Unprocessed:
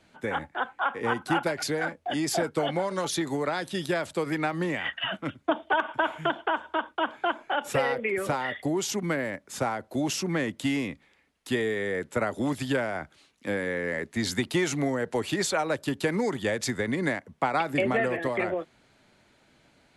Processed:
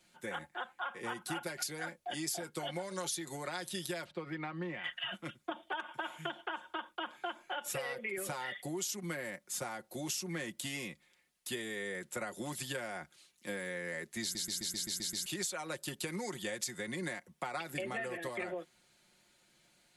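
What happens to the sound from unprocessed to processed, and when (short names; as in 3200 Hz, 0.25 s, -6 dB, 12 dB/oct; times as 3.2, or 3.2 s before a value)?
4.04–4.84 air absorption 340 m
14.22 stutter in place 0.13 s, 8 plays
whole clip: pre-emphasis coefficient 0.8; comb 5.6 ms, depth 60%; compressor, threshold -36 dBFS; gain +1.5 dB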